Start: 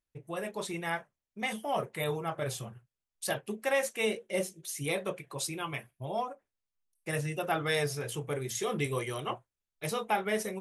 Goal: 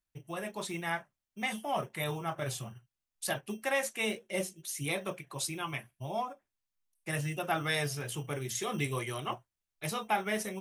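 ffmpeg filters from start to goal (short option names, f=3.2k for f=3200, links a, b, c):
-filter_complex "[0:a]equalizer=f=470:t=o:w=0.41:g=-7.5,acrossover=split=350|5200[a][b][c];[a]acrusher=samples=15:mix=1:aa=0.000001[d];[d][b][c]amix=inputs=3:normalize=0"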